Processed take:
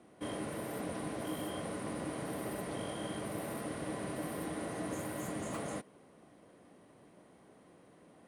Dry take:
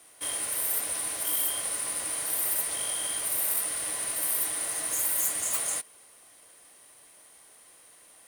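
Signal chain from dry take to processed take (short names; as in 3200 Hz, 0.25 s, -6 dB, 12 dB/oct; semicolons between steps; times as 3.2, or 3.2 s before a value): band-pass 190 Hz, Q 1.4; gain +15.5 dB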